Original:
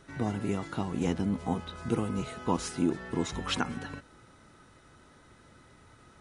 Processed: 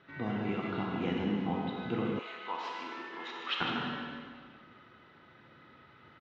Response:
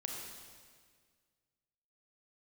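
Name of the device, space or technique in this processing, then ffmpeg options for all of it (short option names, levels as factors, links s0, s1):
PA in a hall: -filter_complex "[0:a]highpass=120,lowpass=f=3400:w=0.5412,lowpass=f=3400:w=1.3066,equalizer=f=3900:t=o:w=2:g=4,aecho=1:1:154:0.422[s0];[1:a]atrim=start_sample=2205[s1];[s0][s1]afir=irnorm=-1:irlink=0,asettb=1/sr,asplit=3[s2][s3][s4];[s2]atrim=end=2.194[s5];[s3]atrim=start=2.19:end=3.61,asetpts=PTS-STARTPTS,afade=t=in:d=0.004:c=qsin,afade=t=out:st=1.416:d=0.004:c=qsin,highpass=820[s6];[s4]atrim=start=3.606[s7];[s5][s6]acrossfade=d=0.004:c1=hsin:c2=qsin[s8];[s8][s7]acrossfade=d=0.004:c1=qsin:c2=hsin,equalizer=f=2100:t=o:w=2.4:g=3,volume=0.708"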